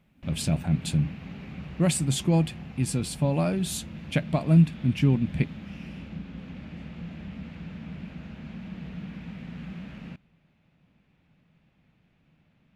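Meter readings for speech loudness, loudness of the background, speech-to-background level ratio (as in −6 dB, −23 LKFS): −26.0 LKFS, −40.5 LKFS, 14.5 dB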